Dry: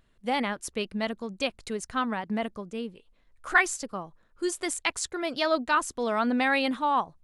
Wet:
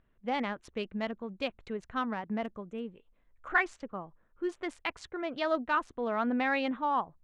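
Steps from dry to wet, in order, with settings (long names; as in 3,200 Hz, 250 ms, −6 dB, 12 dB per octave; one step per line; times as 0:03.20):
adaptive Wiener filter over 9 samples
low-pass filter 4,100 Hz 12 dB per octave, from 0:02.44 10,000 Hz, from 0:03.48 3,100 Hz
de-essing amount 75%
level −4 dB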